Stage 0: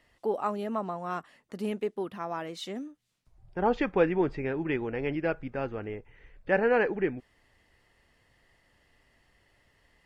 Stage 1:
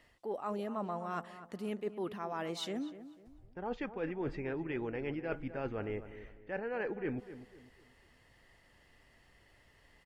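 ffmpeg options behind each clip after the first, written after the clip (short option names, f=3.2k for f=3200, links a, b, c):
-filter_complex "[0:a]areverse,acompressor=threshold=-35dB:ratio=16,areverse,asplit=2[a][b];[b]adelay=249,lowpass=f=2k:p=1,volume=-12.5dB,asplit=2[c][d];[d]adelay=249,lowpass=f=2k:p=1,volume=0.36,asplit=2[e][f];[f]adelay=249,lowpass=f=2k:p=1,volume=0.36,asplit=2[g][h];[h]adelay=249,lowpass=f=2k:p=1,volume=0.36[i];[a][c][e][g][i]amix=inputs=5:normalize=0,volume=1dB"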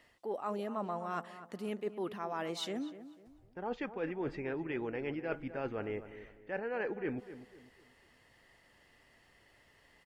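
-af "lowshelf=f=100:g=-10,volume=1dB"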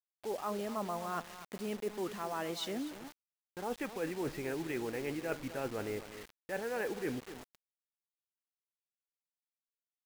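-af "acrusher=bits=7:mix=0:aa=0.000001"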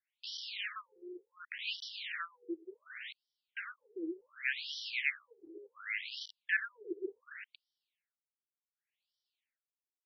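-af "asuperstop=centerf=690:order=8:qfactor=0.52,afftfilt=real='re*between(b*sr/1024,460*pow(4200/460,0.5+0.5*sin(2*PI*0.68*pts/sr))/1.41,460*pow(4200/460,0.5+0.5*sin(2*PI*0.68*pts/sr))*1.41)':imag='im*between(b*sr/1024,460*pow(4200/460,0.5+0.5*sin(2*PI*0.68*pts/sr))/1.41,460*pow(4200/460,0.5+0.5*sin(2*PI*0.68*pts/sr))*1.41)':win_size=1024:overlap=0.75,volume=15.5dB"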